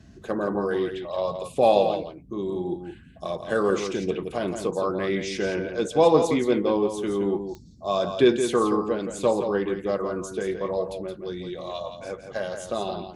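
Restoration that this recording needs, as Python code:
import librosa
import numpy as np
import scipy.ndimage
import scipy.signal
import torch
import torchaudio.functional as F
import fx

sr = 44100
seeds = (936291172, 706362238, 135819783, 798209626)

y = fx.fix_declick_ar(x, sr, threshold=10.0)
y = fx.noise_reduce(y, sr, print_start_s=2.75, print_end_s=3.25, reduce_db=29.0)
y = fx.fix_echo_inverse(y, sr, delay_ms=170, level_db=-8.0)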